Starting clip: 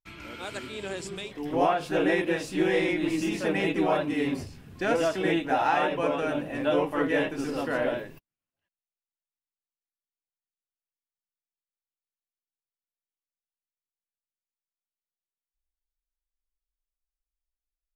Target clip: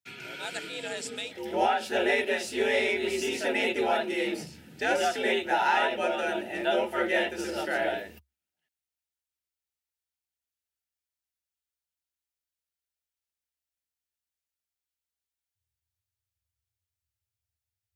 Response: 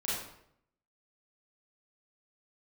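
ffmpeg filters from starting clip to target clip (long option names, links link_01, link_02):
-af "afreqshift=66,asuperstop=centerf=1100:order=12:qfactor=5,tiltshelf=frequency=970:gain=-4"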